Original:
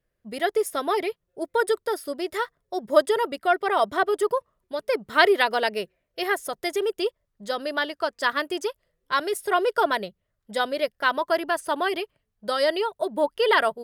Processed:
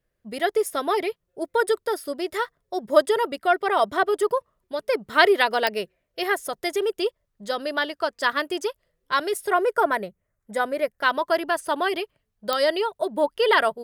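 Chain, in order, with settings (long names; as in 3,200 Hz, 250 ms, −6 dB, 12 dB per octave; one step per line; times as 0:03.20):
0:09.52–0:10.99: flat-topped bell 3,800 Hz −10.5 dB 1.1 octaves
digital clicks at 0:05.67/0:12.53, −9 dBFS
level +1 dB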